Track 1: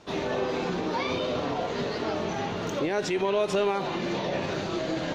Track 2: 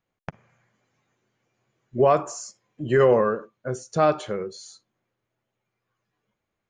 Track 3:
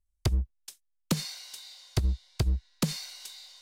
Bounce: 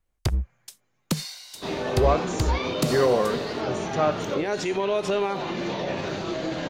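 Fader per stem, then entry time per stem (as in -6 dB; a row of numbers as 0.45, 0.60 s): +0.5, -3.5, +2.0 dB; 1.55, 0.00, 0.00 s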